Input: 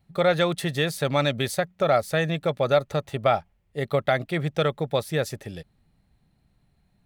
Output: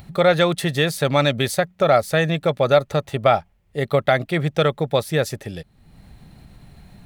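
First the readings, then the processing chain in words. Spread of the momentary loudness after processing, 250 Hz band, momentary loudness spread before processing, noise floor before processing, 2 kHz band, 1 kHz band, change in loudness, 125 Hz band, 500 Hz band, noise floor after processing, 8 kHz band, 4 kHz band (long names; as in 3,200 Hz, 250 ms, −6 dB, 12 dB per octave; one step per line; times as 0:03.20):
9 LU, +5.0 dB, 9 LU, −67 dBFS, +5.0 dB, +5.0 dB, +5.0 dB, +5.0 dB, +5.0 dB, −59 dBFS, +5.0 dB, +5.0 dB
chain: upward compression, threshold −35 dBFS
level +5 dB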